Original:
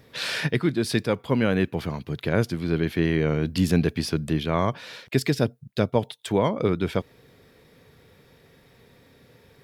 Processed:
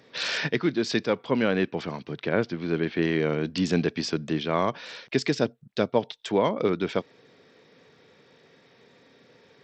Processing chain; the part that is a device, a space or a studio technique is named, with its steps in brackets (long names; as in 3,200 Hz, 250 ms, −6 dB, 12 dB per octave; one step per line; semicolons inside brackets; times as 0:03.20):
0:02.11–0:03.02: low-pass filter 3,700 Hz 12 dB per octave
Bluetooth headset (high-pass filter 210 Hz 12 dB per octave; downsampling to 16,000 Hz; SBC 64 kbit/s 32,000 Hz)